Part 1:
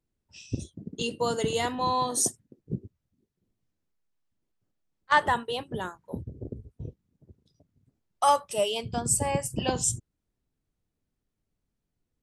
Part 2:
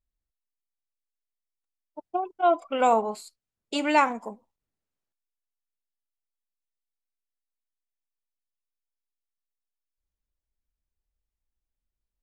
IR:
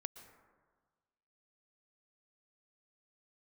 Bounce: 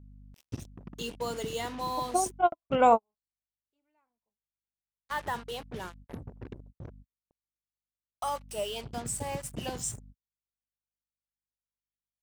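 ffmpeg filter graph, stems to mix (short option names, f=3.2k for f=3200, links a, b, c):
-filter_complex "[0:a]alimiter=limit=-16.5dB:level=0:latency=1:release=113,acrusher=bits=5:mix=0:aa=0.5,volume=-6.5dB,asplit=2[a][b];[1:a]highshelf=f=3.5k:g=-10.5,aeval=exprs='val(0)+0.00282*(sin(2*PI*50*n/s)+sin(2*PI*2*50*n/s)/2+sin(2*PI*3*50*n/s)/3+sin(2*PI*4*50*n/s)/4+sin(2*PI*5*50*n/s)/5)':c=same,volume=1dB[c];[b]apad=whole_len=539149[d];[c][d]sidechaingate=range=-55dB:threshold=-59dB:ratio=16:detection=peak[e];[a][e]amix=inputs=2:normalize=0"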